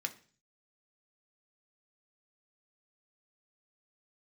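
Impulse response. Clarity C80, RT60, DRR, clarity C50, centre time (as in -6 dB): 20.5 dB, 0.40 s, 4.5 dB, 16.0 dB, 6 ms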